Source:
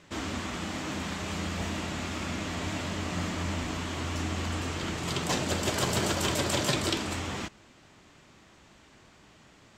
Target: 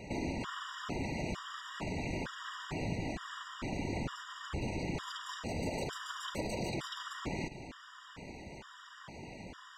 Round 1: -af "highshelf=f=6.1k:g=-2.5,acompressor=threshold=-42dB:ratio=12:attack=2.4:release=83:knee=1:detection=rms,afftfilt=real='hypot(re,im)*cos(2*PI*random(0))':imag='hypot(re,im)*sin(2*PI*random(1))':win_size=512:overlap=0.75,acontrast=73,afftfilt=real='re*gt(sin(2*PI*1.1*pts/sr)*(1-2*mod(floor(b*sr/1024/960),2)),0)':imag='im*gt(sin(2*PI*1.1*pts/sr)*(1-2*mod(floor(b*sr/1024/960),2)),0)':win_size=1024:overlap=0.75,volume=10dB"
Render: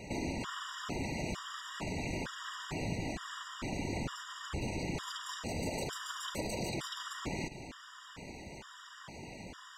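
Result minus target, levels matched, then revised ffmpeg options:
8000 Hz band +4.5 dB
-af "highshelf=f=6.1k:g=-12,acompressor=threshold=-42dB:ratio=12:attack=2.4:release=83:knee=1:detection=rms,afftfilt=real='hypot(re,im)*cos(2*PI*random(0))':imag='hypot(re,im)*sin(2*PI*random(1))':win_size=512:overlap=0.75,acontrast=73,afftfilt=real='re*gt(sin(2*PI*1.1*pts/sr)*(1-2*mod(floor(b*sr/1024/960),2)),0)':imag='im*gt(sin(2*PI*1.1*pts/sr)*(1-2*mod(floor(b*sr/1024/960),2)),0)':win_size=1024:overlap=0.75,volume=10dB"

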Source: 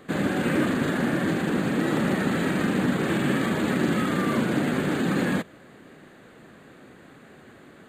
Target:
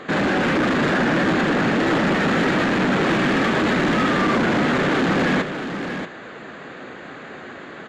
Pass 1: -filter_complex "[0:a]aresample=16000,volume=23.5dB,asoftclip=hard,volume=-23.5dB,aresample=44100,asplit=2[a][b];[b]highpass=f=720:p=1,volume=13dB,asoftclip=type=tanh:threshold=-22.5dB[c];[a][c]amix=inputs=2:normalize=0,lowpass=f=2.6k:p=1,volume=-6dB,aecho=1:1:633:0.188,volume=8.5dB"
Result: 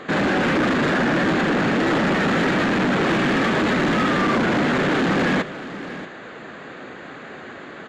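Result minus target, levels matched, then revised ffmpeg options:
echo-to-direct -6 dB
-filter_complex "[0:a]aresample=16000,volume=23.5dB,asoftclip=hard,volume=-23.5dB,aresample=44100,asplit=2[a][b];[b]highpass=f=720:p=1,volume=13dB,asoftclip=type=tanh:threshold=-22.5dB[c];[a][c]amix=inputs=2:normalize=0,lowpass=f=2.6k:p=1,volume=-6dB,aecho=1:1:633:0.376,volume=8.5dB"

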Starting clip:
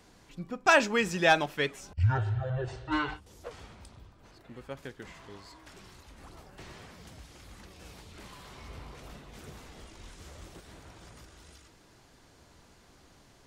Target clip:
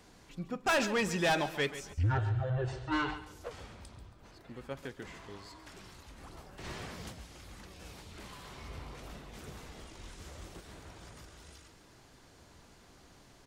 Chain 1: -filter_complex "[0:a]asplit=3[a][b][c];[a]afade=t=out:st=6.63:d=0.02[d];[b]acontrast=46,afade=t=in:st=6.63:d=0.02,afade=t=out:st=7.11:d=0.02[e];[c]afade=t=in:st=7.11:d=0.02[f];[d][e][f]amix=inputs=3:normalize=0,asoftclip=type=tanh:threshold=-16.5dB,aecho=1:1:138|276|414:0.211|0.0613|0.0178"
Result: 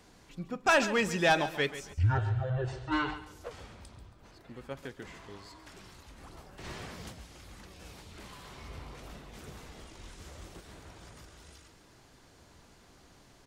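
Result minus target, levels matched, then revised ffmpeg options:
soft clip: distortion -7 dB
-filter_complex "[0:a]asplit=3[a][b][c];[a]afade=t=out:st=6.63:d=0.02[d];[b]acontrast=46,afade=t=in:st=6.63:d=0.02,afade=t=out:st=7.11:d=0.02[e];[c]afade=t=in:st=7.11:d=0.02[f];[d][e][f]amix=inputs=3:normalize=0,asoftclip=type=tanh:threshold=-24dB,aecho=1:1:138|276|414:0.211|0.0613|0.0178"

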